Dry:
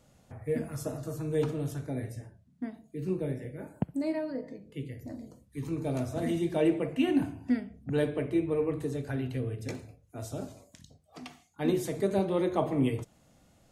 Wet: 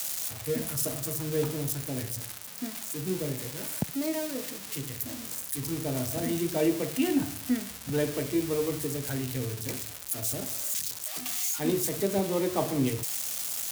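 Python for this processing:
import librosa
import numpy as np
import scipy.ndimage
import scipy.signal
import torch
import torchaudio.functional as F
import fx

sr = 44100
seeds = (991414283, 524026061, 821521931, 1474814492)

y = x + 0.5 * 10.0 ** (-22.5 / 20.0) * np.diff(np.sign(x), prepend=np.sign(x[:1]))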